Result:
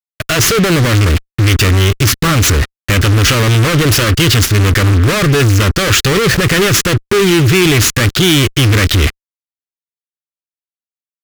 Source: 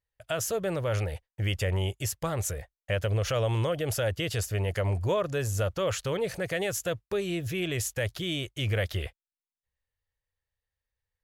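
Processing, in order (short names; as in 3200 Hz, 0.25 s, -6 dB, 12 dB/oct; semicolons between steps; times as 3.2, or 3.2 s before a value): median filter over 5 samples; fuzz box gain 49 dB, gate -49 dBFS; band shelf 700 Hz -10 dB 1.2 oct; gain +5.5 dB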